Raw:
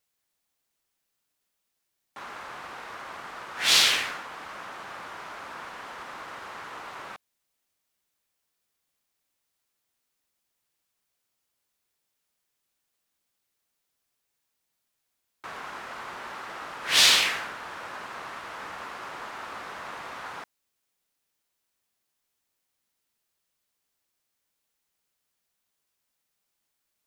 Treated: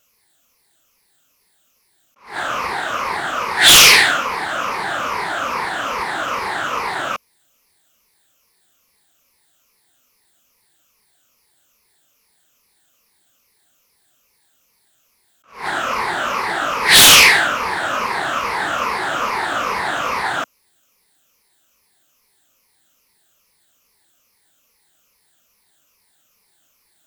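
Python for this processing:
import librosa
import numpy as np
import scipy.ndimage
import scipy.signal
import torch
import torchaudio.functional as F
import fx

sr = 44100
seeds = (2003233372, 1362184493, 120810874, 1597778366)

y = fx.spec_ripple(x, sr, per_octave=0.86, drift_hz=-2.4, depth_db=12)
y = fx.fold_sine(y, sr, drive_db=12, ceiling_db=-3.5)
y = fx.attack_slew(y, sr, db_per_s=160.0)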